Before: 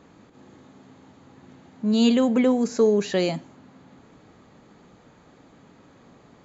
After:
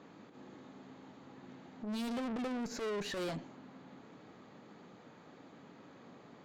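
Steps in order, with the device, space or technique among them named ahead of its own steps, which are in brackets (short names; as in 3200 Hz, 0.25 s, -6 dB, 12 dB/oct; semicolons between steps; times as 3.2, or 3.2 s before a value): valve radio (BPF 150–5500 Hz; tube stage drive 33 dB, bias 0.25; core saturation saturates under 120 Hz); gain -2 dB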